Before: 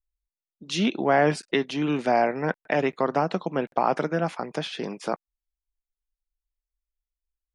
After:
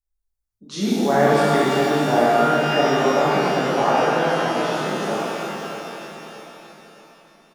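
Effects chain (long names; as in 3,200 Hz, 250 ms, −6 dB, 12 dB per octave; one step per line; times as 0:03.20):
parametric band 2,700 Hz −12.5 dB 0.69 octaves
repeating echo 616 ms, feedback 42%, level −10.5 dB
reverb with rising layers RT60 2.8 s, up +12 semitones, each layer −8 dB, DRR −9.5 dB
level −4 dB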